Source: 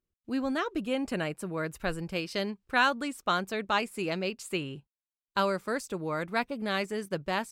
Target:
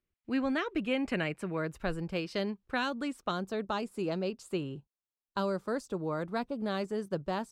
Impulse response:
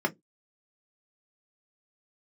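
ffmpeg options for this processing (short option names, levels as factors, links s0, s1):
-filter_complex "[0:a]asetnsamples=n=441:p=0,asendcmd='1.57 equalizer g -2;3.31 equalizer g -10.5',equalizer=f=2200:w=1.5:g=8,acrossover=split=440|3000[s0][s1][s2];[s1]acompressor=threshold=0.0282:ratio=6[s3];[s0][s3][s2]amix=inputs=3:normalize=0,aemphasis=mode=reproduction:type=50kf"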